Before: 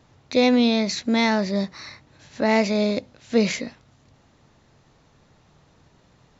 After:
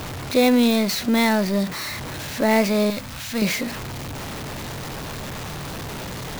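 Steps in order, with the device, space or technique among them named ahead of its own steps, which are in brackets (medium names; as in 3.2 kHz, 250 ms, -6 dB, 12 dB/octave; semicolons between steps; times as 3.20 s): early CD player with a faulty converter (jump at every zero crossing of -26 dBFS; sampling jitter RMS 0.021 ms); 2.90–3.42 s: peaking EQ 390 Hz -14.5 dB 1.3 oct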